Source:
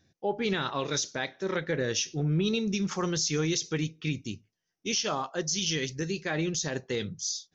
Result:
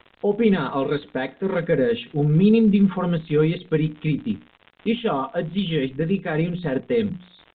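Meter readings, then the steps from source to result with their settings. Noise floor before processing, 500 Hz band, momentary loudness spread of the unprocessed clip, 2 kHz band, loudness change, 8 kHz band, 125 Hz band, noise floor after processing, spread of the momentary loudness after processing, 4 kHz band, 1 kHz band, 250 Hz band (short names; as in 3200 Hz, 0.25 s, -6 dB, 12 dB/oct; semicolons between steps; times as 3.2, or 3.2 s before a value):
-83 dBFS, +10.0 dB, 6 LU, +2.5 dB, +8.0 dB, n/a, +9.0 dB, -57 dBFS, 9 LU, -3.5 dB, +5.5 dB, +11.5 dB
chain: notches 60/120/180/240/300/360 Hz; gate -51 dBFS, range -53 dB; tilt shelf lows +5.5 dB; comb 4.3 ms, depth 71%; crackle 99/s -33 dBFS; air absorption 75 m; downsampling 8000 Hz; gain +5 dB; Opus 24 kbps 48000 Hz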